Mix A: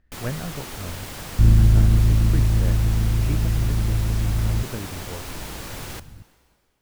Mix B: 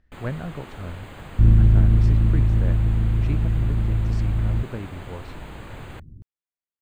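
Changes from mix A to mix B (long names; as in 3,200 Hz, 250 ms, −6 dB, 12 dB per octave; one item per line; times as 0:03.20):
first sound: add moving average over 8 samples
reverb: off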